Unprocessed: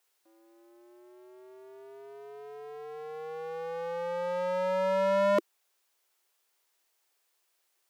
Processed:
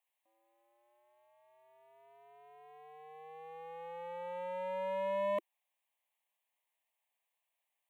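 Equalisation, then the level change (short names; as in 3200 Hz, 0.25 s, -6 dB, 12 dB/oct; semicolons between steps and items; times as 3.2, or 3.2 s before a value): low shelf 160 Hz -12 dB; high shelf 3400 Hz -6.5 dB; fixed phaser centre 1400 Hz, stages 6; -5.0 dB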